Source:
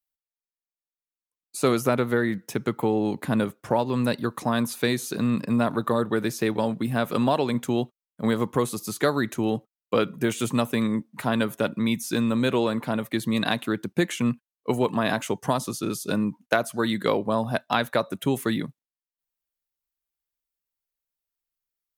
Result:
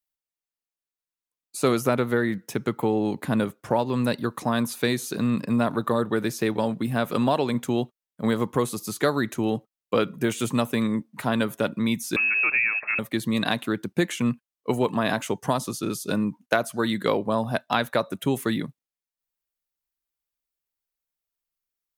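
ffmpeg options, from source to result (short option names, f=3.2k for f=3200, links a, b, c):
-filter_complex "[0:a]asettb=1/sr,asplit=3[a][b][c];[a]atrim=end=12.164[d];[b]atrim=start=12.16:end=12.99,asetpts=PTS-STARTPTS,afade=t=in:d=0.004:c=qsin,afade=t=out:st=0.826:d=0.004:c=qsin,lowpass=f=2.4k:t=q:w=0.5098,lowpass=f=2.4k:t=q:w=0.6013,lowpass=f=2.4k:t=q:w=0.9,lowpass=f=2.4k:t=q:w=2.563,afreqshift=-2800[e];[c]atrim=start=12.986[f];[d][e]acrossfade=d=0.004:c1=hsin:c2=qsin[g];[g][f]acrossfade=d=0.004:c1=qsin:c2=hsin"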